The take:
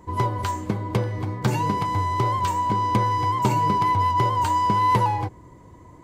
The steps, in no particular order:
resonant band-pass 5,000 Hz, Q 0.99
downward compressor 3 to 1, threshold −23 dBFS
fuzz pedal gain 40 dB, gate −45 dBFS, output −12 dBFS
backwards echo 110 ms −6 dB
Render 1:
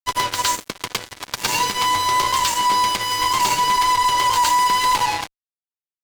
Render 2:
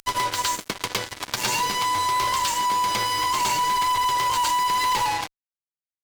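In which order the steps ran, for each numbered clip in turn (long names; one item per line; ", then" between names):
downward compressor, then resonant band-pass, then backwards echo, then fuzz pedal
backwards echo, then resonant band-pass, then fuzz pedal, then downward compressor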